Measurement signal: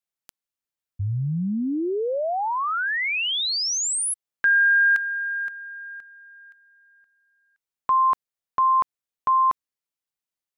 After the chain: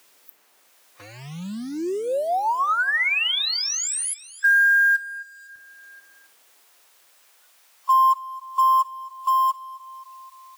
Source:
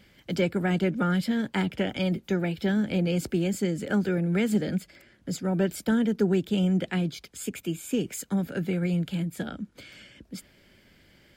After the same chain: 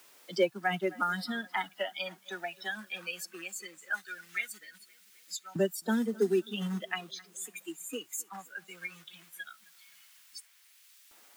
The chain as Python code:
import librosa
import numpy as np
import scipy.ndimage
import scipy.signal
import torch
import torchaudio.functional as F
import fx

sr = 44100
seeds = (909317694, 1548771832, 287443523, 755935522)

p1 = fx.bin_expand(x, sr, power=2.0)
p2 = fx.quant_float(p1, sr, bits=2)
p3 = p1 + F.gain(torch.from_numpy(p2), -5.0).numpy()
p4 = scipy.signal.sosfilt(scipy.signal.butter(2, 160.0, 'highpass', fs=sr, output='sos'), p3)
p5 = fx.low_shelf(p4, sr, hz=330.0, db=3.0)
p6 = p5 + 0.35 * np.pad(p5, (int(5.5 * sr / 1000.0), 0))[:len(p5)]
p7 = fx.dmg_noise_colour(p6, sr, seeds[0], colour='white', level_db=-57.0)
p8 = fx.filter_lfo_highpass(p7, sr, shape='saw_up', hz=0.18, low_hz=290.0, high_hz=2600.0, q=0.8)
p9 = fx.echo_feedback(p8, sr, ms=261, feedback_pct=49, wet_db=-21)
p10 = fx.noise_reduce_blind(p9, sr, reduce_db=10)
y = fx.band_squash(p10, sr, depth_pct=40)